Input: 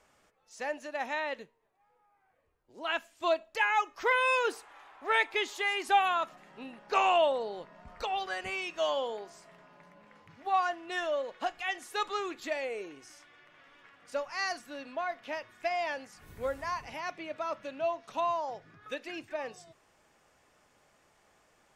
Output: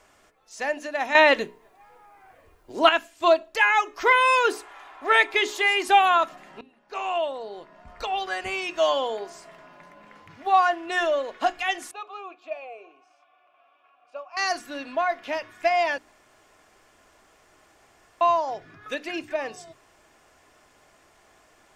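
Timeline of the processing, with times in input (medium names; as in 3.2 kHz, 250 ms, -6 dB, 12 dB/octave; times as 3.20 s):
1.15–2.89 s: gain +11 dB
6.61–8.94 s: fade in, from -24 dB
11.91–14.37 s: vowel filter a
15.98–18.21 s: room tone
whole clip: hum notches 60/120/180/240/300/360/420 Hz; comb 2.9 ms, depth 31%; trim +8 dB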